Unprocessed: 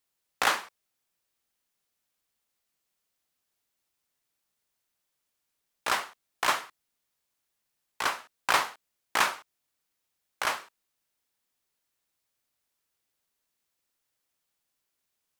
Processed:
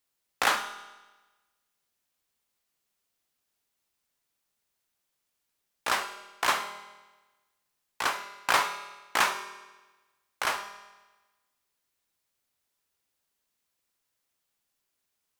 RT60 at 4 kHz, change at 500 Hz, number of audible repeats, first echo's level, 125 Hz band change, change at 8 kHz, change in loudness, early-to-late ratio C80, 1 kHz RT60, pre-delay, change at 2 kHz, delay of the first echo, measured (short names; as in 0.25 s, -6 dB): 1.1 s, +0.5 dB, none, none, +0.5 dB, +0.5 dB, 0.0 dB, 12.5 dB, 1.2 s, 5 ms, +0.5 dB, none